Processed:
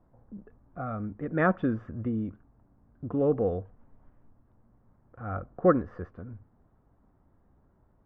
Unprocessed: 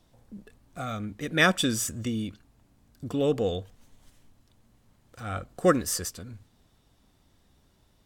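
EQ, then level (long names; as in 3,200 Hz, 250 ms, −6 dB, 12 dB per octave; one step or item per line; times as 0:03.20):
low-pass filter 1,400 Hz 24 dB per octave
0.0 dB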